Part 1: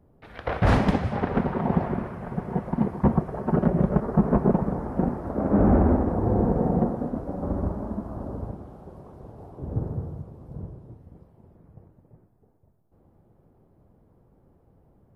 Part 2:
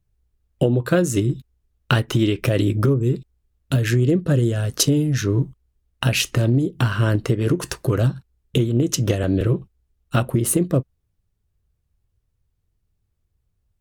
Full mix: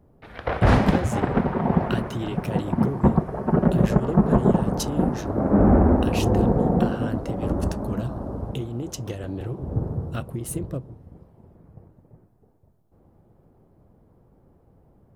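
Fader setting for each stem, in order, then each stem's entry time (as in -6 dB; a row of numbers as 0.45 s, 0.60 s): +2.5 dB, -12.0 dB; 0.00 s, 0.00 s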